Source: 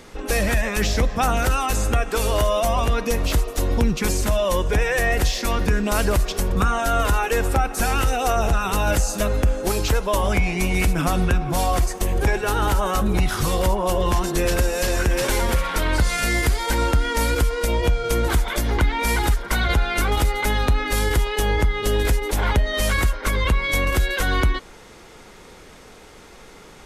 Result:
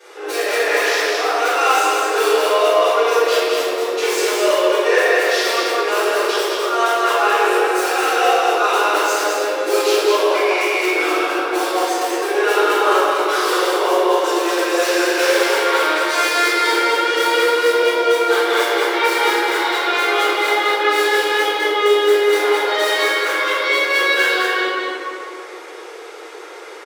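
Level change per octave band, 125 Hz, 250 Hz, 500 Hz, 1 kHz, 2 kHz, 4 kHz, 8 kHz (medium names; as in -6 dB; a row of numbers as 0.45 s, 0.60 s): under -40 dB, +1.0 dB, +9.0 dB, +7.5 dB, +8.0 dB, +8.0 dB, +1.5 dB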